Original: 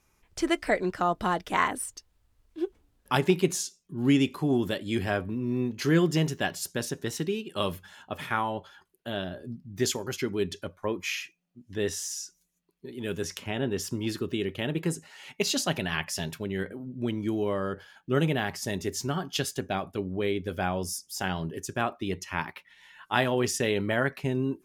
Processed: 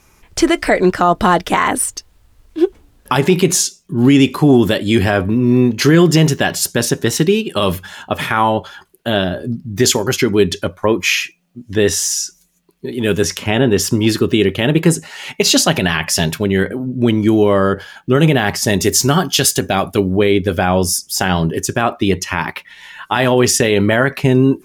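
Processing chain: 18.8–20.17 high shelf 4300 Hz +8.5 dB; maximiser +18 dB; gain -1 dB

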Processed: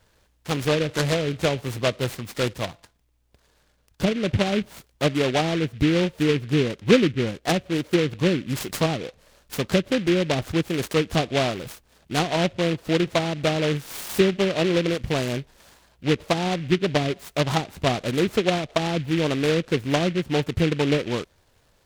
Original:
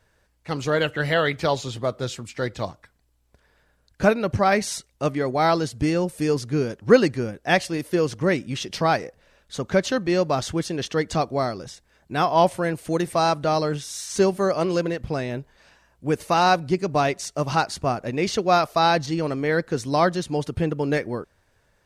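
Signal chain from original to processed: treble ducked by the level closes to 380 Hz, closed at -16.5 dBFS; 2.53–4.15 resonator 170 Hz, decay 0.5 s, harmonics all, mix 30%; noise-modulated delay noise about 2300 Hz, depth 0.12 ms; gain +2.5 dB

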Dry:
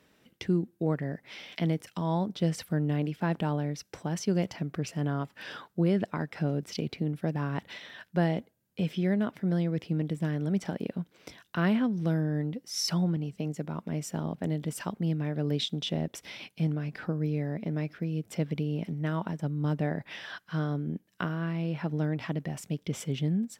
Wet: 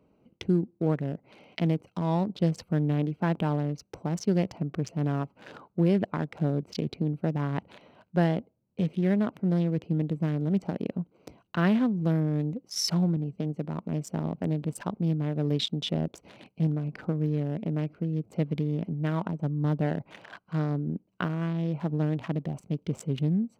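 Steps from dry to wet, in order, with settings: Wiener smoothing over 25 samples; gain +2.5 dB

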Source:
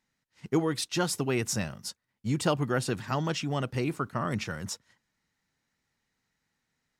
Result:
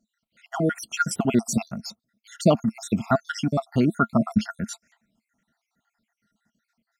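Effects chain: random spectral dropouts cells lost 66%; small resonant body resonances 220/670/1400 Hz, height 16 dB, ringing for 55 ms; gain +4 dB

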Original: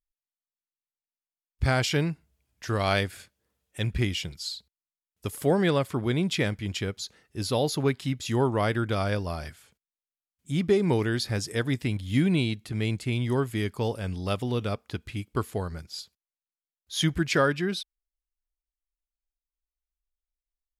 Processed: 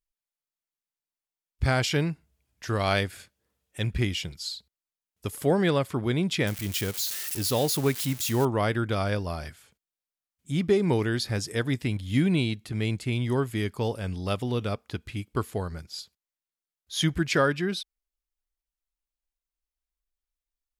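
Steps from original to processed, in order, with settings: 6.47–8.45 switching spikes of -24 dBFS

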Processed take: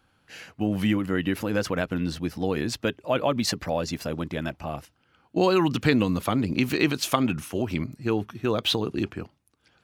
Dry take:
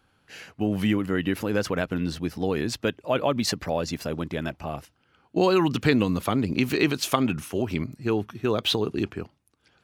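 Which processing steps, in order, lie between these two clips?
notch 410 Hz, Q 12

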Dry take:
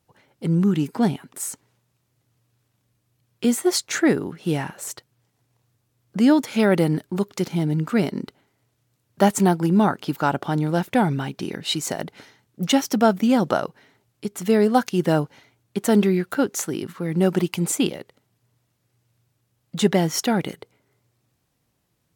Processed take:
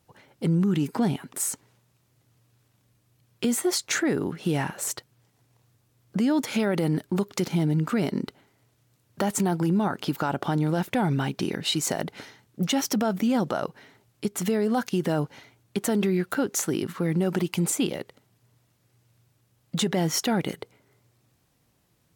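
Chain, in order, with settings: limiter -16.5 dBFS, peak gain reduction 11.5 dB; compressor 1.5:1, threshold -30 dBFS, peak gain reduction 4 dB; gain +3.5 dB

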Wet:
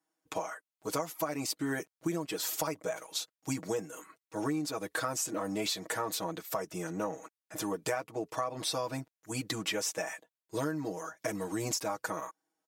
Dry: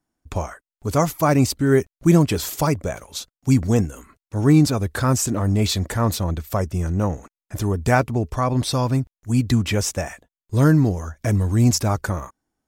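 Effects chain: HPF 370 Hz 12 dB/oct; comb 6.3 ms, depth 96%; compressor 12:1, threshold -24 dBFS, peak gain reduction 14.5 dB; gain -5.5 dB

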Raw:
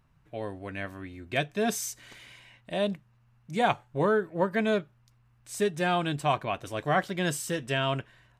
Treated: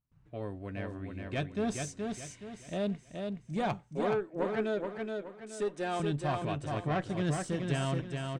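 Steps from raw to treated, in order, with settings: 3.81–6 HPF 260 Hz 24 dB/oct; gate with hold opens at -57 dBFS; steep low-pass 9500 Hz 48 dB/oct; low shelf 480 Hz +10 dB; tube stage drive 17 dB, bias 0.25; feedback echo 0.423 s, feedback 36%, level -4.5 dB; gain -8 dB

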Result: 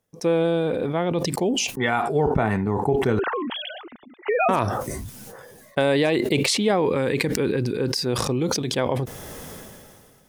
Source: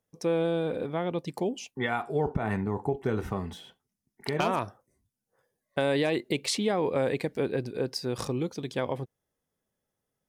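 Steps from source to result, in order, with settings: 3.19–4.49 sine-wave speech; 6.85–8.06 bell 670 Hz -14 dB 0.4 oct; sustainer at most 27 dB/s; gain +6 dB

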